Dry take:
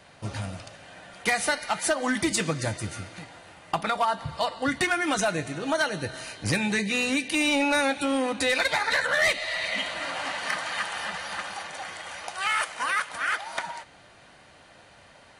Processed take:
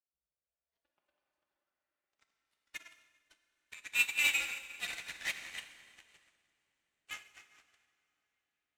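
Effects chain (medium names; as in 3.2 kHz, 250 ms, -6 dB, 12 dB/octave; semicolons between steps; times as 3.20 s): jump at every zero crossing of -33.5 dBFS; amplifier tone stack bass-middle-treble 10-0-10; time stretch by phase-locked vocoder 0.57×; in parallel at -5 dB: one-sided clip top -28.5 dBFS; on the sum: band-pass sweep 280 Hz -> 2.6 kHz, 0.07–2.36 s; frequency shift -47 Hz; Chebyshev shaper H 3 -34 dB, 7 -16 dB, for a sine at -18 dBFS; on a send: feedback echo behind a low-pass 529 ms, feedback 65%, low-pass 560 Hz, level -7.5 dB; on the sum: plate-style reverb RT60 4.1 s, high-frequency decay 0.8×, pre-delay 0 ms, DRR -1 dB; upward expansion 2.5:1, over -46 dBFS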